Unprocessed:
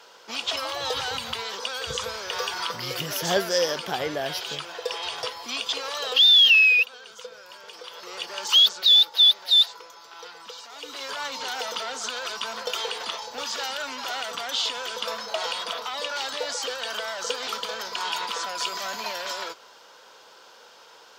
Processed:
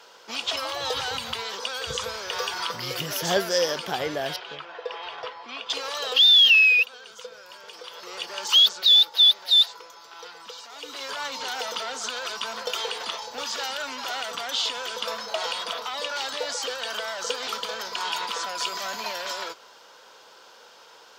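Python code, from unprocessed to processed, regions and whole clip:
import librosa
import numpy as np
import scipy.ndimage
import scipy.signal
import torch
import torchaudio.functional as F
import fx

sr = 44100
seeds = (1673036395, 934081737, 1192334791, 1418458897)

y = fx.chain(x, sr, fx.lowpass(hz=2200.0, slope=12),
    fx.low_shelf(hz=290.0, db=-10.0), at=(4.36, 5.7))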